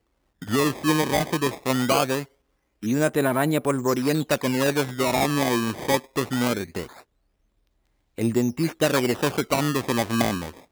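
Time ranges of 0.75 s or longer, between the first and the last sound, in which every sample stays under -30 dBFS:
6.86–8.18 s

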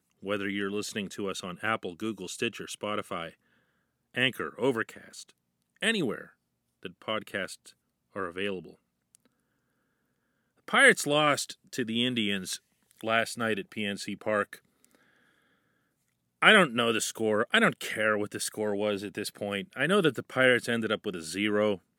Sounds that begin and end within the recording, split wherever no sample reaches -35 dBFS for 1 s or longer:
10.68–14.55 s

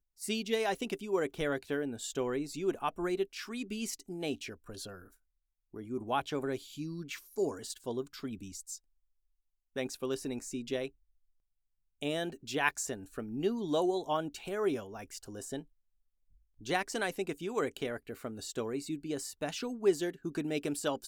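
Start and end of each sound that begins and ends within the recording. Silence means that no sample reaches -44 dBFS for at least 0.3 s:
5.74–8.76 s
9.76–10.88 s
12.02–15.62 s

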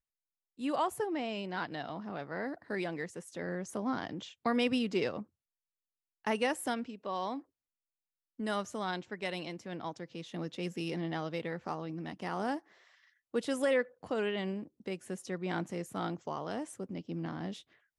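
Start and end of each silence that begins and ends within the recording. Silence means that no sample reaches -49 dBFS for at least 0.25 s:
5.23–6.25 s
7.41–8.39 s
12.59–13.34 s

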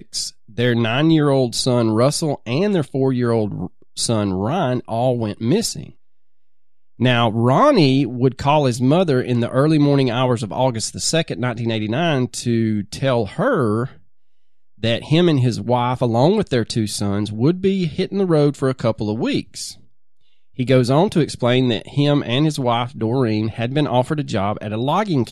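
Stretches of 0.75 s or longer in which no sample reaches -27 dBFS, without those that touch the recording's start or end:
5.87–7.00 s
13.86–14.83 s
19.72–20.59 s

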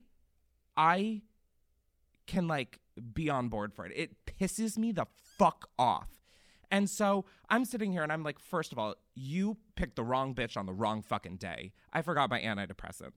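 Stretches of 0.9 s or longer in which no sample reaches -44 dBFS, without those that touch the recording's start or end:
1.19–2.28 s

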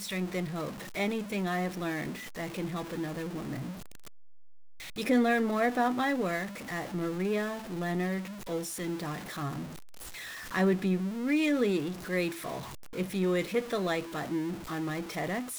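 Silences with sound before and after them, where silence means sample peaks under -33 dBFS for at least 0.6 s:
3.69–4.98 s
9.62–10.52 s

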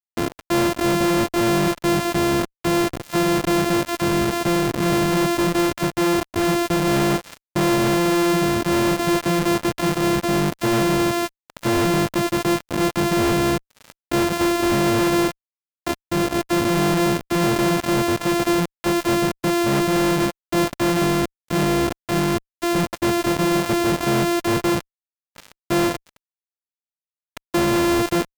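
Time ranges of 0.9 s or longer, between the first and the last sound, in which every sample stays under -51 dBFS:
26.17–27.37 s

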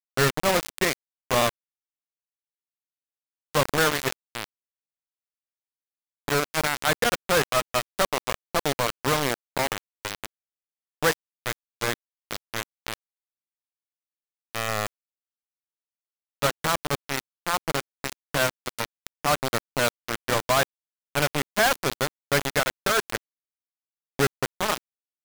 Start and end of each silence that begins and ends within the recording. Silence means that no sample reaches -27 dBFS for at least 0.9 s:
1.49–3.55 s
4.44–6.28 s
12.94–14.55 s
14.87–16.42 s
23.17–24.19 s

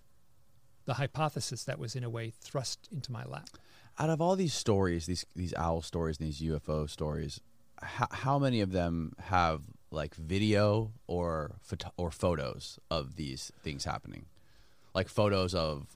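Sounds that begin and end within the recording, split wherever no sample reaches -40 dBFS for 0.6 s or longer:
0.88–14.19 s

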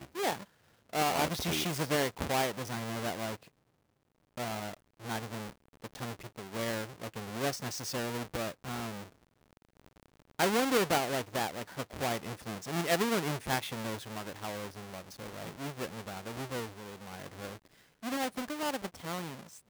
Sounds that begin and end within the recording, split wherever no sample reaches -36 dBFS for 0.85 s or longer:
4.38–9.04 s

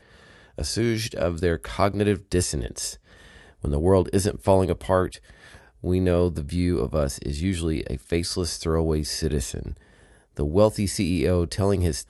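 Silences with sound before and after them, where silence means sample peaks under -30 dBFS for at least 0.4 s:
2.93–3.64 s
5.15–5.84 s
9.73–10.37 s

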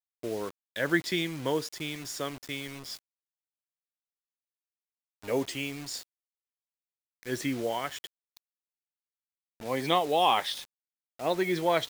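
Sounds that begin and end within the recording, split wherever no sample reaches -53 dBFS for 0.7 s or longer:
5.22–6.03 s
7.23–8.37 s

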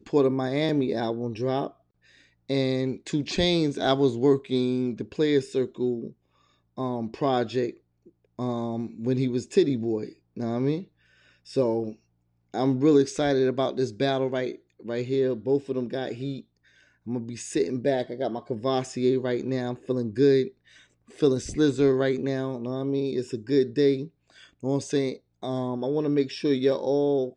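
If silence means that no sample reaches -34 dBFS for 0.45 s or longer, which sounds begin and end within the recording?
2.50–6.09 s
6.78–7.71 s
8.39–10.82 s
11.51–11.91 s
12.54–16.40 s
17.07–20.48 s
21.19–24.05 s

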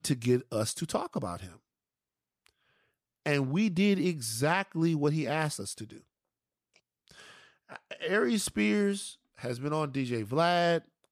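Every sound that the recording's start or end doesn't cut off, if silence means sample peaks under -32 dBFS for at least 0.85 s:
3.26–5.83 s

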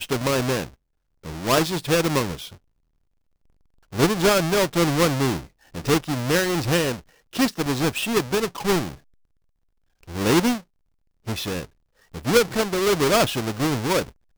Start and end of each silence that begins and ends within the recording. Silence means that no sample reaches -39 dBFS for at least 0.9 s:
2.55–3.93 s
8.95–10.03 s

